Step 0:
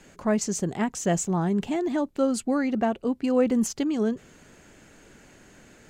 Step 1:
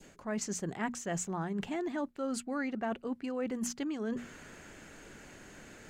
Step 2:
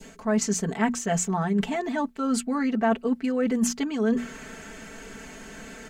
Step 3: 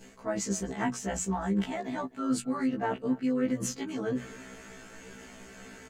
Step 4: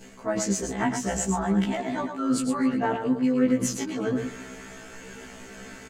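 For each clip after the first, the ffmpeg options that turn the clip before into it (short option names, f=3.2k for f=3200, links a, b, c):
-af "bandreject=f=60:t=h:w=6,bandreject=f=120:t=h:w=6,bandreject=f=180:t=h:w=6,bandreject=f=240:t=h:w=6,areverse,acompressor=threshold=-34dB:ratio=6,areverse,adynamicequalizer=threshold=0.00141:dfrequency=1600:dqfactor=0.93:tfrequency=1600:tqfactor=0.93:attack=5:release=100:ratio=0.375:range=3.5:mode=boostabove:tftype=bell"
-af "aecho=1:1:4.5:0.94,volume=7dB"
-filter_complex "[0:a]tremolo=f=110:d=0.571,asplit=2[a][b];[b]adelay=256.6,volume=-20dB,highshelf=f=4k:g=-5.77[c];[a][c]amix=inputs=2:normalize=0,afftfilt=real='re*1.73*eq(mod(b,3),0)':imag='im*1.73*eq(mod(b,3),0)':win_size=2048:overlap=0.75,volume=-1dB"
-af "aecho=1:1:111:0.447,volume=4.5dB"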